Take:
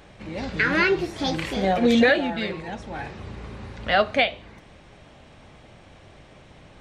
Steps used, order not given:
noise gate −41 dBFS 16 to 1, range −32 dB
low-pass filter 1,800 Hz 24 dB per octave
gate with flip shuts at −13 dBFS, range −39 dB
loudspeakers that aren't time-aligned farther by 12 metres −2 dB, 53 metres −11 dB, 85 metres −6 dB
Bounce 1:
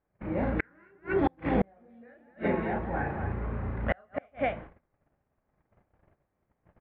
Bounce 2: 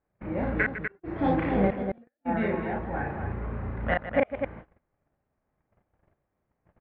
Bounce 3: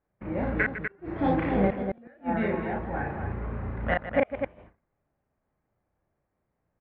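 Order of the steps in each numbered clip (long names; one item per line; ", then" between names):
loudspeakers that aren't time-aligned, then noise gate, then low-pass filter, then gate with flip
low-pass filter, then gate with flip, then loudspeakers that aren't time-aligned, then noise gate
low-pass filter, then noise gate, then gate with flip, then loudspeakers that aren't time-aligned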